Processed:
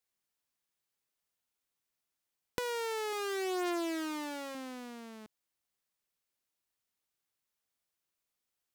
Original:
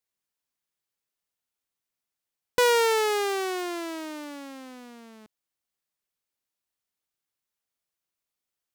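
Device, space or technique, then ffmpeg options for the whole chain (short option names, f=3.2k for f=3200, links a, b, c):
serial compression, leveller first: -filter_complex "[0:a]acompressor=threshold=-26dB:ratio=2.5,acompressor=threshold=-35dB:ratio=5,asettb=1/sr,asplit=3[a][b][c];[a]atrim=end=3.124[d];[b]atrim=start=3.12:end=4.55,asetpts=PTS-STARTPTS,afade=t=in:d=0.004:c=qsin,afade=t=out:st=1.426:d=0.004:c=qsin,aecho=1:1:5.7:0.61,atrim=end_sample=63063[e];[c]atrim=start=4.546[f];[d][e]acrossfade=d=0.004:c1=hsin:c2=qsin[g];[g][f]acrossfade=d=0.004:c1=qsin:c2=hsin"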